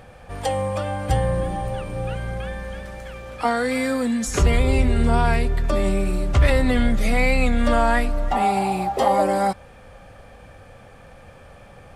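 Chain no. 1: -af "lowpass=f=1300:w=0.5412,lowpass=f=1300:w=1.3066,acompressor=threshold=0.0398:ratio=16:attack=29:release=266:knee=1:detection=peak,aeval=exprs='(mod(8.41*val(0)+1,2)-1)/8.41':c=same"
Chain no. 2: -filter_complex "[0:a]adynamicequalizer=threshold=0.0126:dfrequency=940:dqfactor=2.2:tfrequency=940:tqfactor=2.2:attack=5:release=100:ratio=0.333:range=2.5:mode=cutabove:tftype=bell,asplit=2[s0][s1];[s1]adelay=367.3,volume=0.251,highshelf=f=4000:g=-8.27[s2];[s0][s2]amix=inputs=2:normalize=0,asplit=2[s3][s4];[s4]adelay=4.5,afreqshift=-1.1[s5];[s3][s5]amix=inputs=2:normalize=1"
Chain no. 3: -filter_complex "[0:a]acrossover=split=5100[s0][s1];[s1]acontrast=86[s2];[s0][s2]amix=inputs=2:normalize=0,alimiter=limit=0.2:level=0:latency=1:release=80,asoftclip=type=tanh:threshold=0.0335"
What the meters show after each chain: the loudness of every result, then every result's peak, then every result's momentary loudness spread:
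-32.5 LUFS, -25.0 LUFS, -33.0 LUFS; -18.5 dBFS, -7.5 dBFS, -29.5 dBFS; 16 LU, 13 LU, 15 LU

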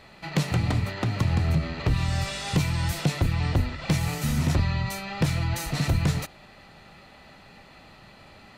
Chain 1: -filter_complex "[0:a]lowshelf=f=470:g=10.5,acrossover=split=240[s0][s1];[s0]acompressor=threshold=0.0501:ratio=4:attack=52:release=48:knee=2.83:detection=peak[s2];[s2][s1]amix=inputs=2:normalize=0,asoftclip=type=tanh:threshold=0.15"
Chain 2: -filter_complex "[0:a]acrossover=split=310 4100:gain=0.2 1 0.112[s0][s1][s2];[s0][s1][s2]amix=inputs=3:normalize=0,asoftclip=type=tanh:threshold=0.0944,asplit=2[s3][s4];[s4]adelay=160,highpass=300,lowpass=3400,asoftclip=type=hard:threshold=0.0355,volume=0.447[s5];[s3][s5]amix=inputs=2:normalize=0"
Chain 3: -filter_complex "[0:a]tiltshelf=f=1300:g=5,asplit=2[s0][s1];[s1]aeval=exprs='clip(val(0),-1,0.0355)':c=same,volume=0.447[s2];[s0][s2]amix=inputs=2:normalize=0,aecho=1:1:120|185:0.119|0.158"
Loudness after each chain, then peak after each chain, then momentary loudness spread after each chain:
-25.0 LUFS, -33.5 LUFS, -19.5 LUFS; -16.5 dBFS, -20.0 dBFS, -5.0 dBFS; 21 LU, 18 LU, 5 LU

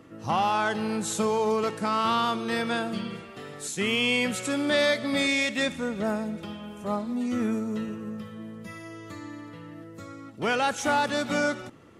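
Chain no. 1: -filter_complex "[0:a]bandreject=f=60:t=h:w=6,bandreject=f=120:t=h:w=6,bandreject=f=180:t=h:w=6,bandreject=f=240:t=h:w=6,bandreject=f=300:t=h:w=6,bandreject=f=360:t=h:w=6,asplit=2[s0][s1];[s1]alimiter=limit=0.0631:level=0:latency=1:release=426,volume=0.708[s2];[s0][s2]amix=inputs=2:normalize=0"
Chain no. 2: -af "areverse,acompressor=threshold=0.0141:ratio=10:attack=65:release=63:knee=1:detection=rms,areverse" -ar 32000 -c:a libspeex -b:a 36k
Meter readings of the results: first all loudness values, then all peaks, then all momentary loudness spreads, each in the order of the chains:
-24.5 LUFS, -37.0 LUFS; -11.0 dBFS, -21.5 dBFS; 15 LU, 6 LU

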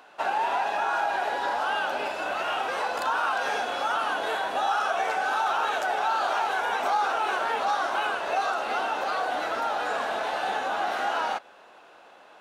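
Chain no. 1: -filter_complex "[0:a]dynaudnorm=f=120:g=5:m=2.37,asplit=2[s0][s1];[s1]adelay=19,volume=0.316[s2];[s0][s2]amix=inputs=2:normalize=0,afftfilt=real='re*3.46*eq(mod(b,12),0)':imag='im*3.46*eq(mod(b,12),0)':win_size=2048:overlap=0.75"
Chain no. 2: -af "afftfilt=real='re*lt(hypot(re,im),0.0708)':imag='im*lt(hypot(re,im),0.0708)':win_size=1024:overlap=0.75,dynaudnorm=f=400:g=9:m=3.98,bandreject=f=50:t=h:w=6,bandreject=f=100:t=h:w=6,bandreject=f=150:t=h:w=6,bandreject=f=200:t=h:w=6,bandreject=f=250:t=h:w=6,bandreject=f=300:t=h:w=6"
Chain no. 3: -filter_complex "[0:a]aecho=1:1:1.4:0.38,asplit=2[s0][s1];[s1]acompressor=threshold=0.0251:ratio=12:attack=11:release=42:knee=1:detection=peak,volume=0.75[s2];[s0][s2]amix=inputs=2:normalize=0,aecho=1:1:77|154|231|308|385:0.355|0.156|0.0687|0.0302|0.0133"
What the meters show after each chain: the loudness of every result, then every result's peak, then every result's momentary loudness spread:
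-21.0 LUFS, -24.5 LUFS, -22.5 LUFS; -5.0 dBFS, -7.5 dBFS, -10.0 dBFS; 6 LU, 9 LU, 3 LU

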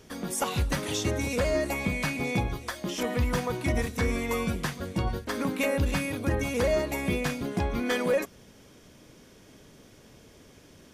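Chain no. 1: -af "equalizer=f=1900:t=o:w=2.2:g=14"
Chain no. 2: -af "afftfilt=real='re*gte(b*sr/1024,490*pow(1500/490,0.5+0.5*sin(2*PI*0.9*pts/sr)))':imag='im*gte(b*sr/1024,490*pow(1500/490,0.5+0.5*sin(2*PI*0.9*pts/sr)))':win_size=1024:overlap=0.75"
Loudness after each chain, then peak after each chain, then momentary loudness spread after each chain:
-22.0 LUFS, -34.5 LUFS; -6.5 dBFS, -18.5 dBFS; 7 LU, 6 LU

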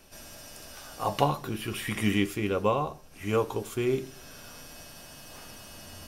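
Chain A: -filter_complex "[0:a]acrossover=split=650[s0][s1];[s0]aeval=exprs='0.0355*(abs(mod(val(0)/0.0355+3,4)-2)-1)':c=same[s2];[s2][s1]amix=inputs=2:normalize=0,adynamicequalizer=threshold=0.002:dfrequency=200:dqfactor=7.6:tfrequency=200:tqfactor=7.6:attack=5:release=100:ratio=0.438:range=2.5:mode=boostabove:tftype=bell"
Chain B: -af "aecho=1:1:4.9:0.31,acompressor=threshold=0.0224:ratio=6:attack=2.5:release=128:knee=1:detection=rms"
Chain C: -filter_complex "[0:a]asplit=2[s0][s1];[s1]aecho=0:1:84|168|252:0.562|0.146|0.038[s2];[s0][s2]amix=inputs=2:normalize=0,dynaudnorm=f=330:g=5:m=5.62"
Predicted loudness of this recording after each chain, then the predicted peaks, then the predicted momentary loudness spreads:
-33.0 LUFS, -40.5 LUFS, -19.0 LUFS; -11.5 dBFS, -23.0 dBFS, -1.5 dBFS; 15 LU, 8 LU, 15 LU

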